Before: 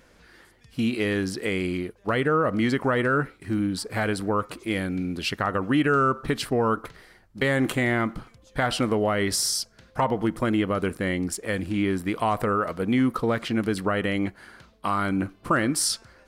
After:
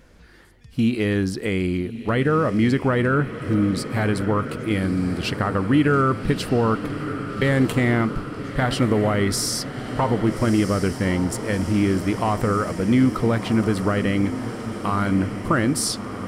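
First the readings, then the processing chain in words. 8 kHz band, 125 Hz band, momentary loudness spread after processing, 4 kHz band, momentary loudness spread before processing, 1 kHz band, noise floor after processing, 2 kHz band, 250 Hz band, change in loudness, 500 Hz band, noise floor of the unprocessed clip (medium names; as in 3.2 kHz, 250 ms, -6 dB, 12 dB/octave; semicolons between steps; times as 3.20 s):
+0.5 dB, +8.0 dB, 6 LU, +0.5 dB, 6 LU, +1.0 dB, -36 dBFS, +0.5 dB, +5.0 dB, +3.5 dB, +2.5 dB, -57 dBFS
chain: bass shelf 240 Hz +9.5 dB; on a send: echo that smears into a reverb 1261 ms, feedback 70%, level -11 dB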